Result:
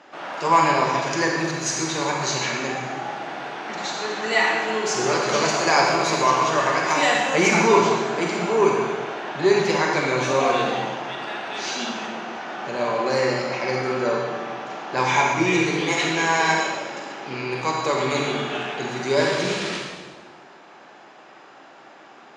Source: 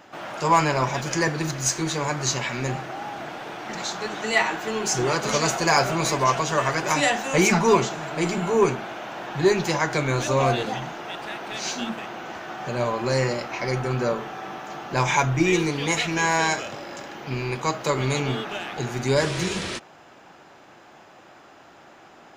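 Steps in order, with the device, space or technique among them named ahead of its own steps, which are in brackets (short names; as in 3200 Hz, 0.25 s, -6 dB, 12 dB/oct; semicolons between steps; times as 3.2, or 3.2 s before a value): supermarket ceiling speaker (BPF 230–5900 Hz; reverb RT60 1.3 s, pre-delay 35 ms, DRR -0.5 dB)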